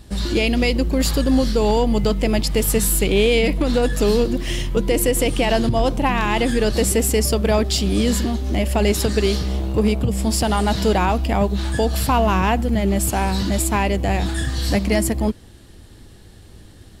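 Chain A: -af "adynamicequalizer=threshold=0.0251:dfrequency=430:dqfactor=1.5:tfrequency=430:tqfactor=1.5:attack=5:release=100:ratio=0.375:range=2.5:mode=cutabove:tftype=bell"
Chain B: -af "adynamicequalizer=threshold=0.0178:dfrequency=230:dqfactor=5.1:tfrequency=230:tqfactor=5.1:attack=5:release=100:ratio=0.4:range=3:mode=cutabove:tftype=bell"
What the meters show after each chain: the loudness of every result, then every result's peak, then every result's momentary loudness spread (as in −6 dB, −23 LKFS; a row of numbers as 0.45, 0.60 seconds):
−20.0, −19.5 LKFS; −8.0, −8.0 dBFS; 4, 4 LU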